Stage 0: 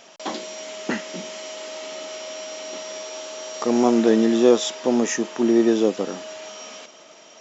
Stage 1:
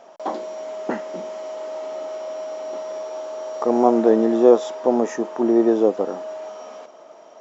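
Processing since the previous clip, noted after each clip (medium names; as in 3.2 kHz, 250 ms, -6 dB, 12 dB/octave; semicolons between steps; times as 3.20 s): FFT filter 180 Hz 0 dB, 690 Hz +11 dB, 1 kHz +8 dB, 2.7 kHz -8 dB; trim -4.5 dB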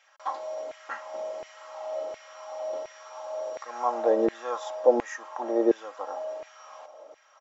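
comb 3.7 ms, depth 61%; LFO high-pass saw down 1.4 Hz 380–2100 Hz; trim -8.5 dB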